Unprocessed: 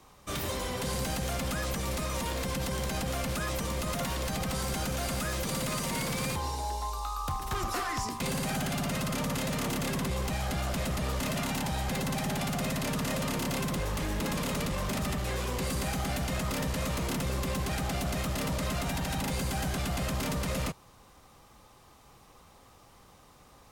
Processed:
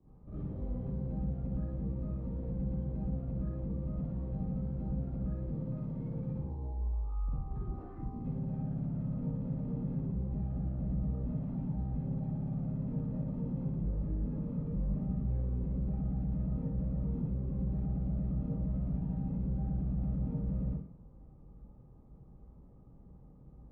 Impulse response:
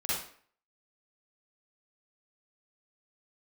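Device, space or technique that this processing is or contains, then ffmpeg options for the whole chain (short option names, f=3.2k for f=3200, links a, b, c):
television next door: -filter_complex "[0:a]acompressor=threshold=-37dB:ratio=6,lowpass=260[a];[1:a]atrim=start_sample=2205[b];[a][b]afir=irnorm=-1:irlink=0"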